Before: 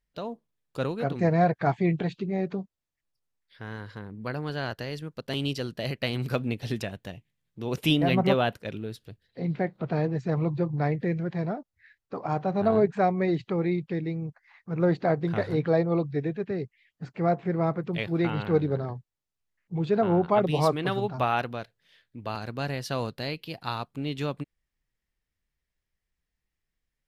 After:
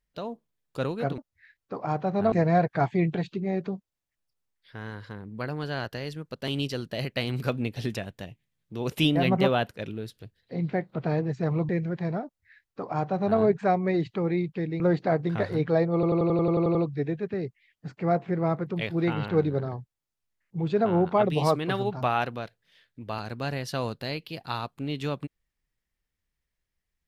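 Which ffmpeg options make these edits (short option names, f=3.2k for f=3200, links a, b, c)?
-filter_complex "[0:a]asplit=14[a][b][c][d][e][f][g][h][i][j][k][l][m][n];[a]atrim=end=1.182[o];[b]atrim=start=11.588:end=12.732[p];[c]atrim=start=1.178:end=10.552[q];[d]atrim=start=11.028:end=14.142[r];[e]atrim=start=14.778:end=16.012[s];[f]atrim=start=15.918:end=16.012[t];[g]atrim=start=15.918:end=16.012[u];[h]atrim=start=15.918:end=16.012[v];[i]atrim=start=15.918:end=16.012[w];[j]atrim=start=15.918:end=16.012[x];[k]atrim=start=15.918:end=16.012[y];[l]atrim=start=15.918:end=16.012[z];[m]atrim=start=15.918:end=16.012[aa];[n]atrim=start=15.918[ab];[o][p]acrossfade=d=0.004:c1=hsin:c2=hsin[ac];[ac][q]acrossfade=d=0.004:c1=hsin:c2=hsin[ad];[ad][r]acrossfade=d=0.004:c1=hsin:c2=hsin[ae];[ae][s]acrossfade=d=0.004:c1=hsin:c2=hsin[af];[af][t]acrossfade=d=0.004:c1=hsin:c2=hsin[ag];[ag][u]acrossfade=d=0.004:c1=hsin:c2=hsin[ah];[ah][v]acrossfade=d=0.004:c1=hsin:c2=hsin[ai];[ai][w]acrossfade=d=0.004:c1=hsin:c2=hsin[aj];[aj][x]acrossfade=d=0.004:c1=hsin:c2=hsin[ak];[ak][y]acrossfade=d=0.004:c1=hsin:c2=hsin[al];[al][z]acrossfade=d=0.004:c1=hsin:c2=hsin[am];[am][aa]acrossfade=d=0.004:c1=hsin:c2=hsin[an];[an][ab]acrossfade=d=0.004:c1=hsin:c2=hsin"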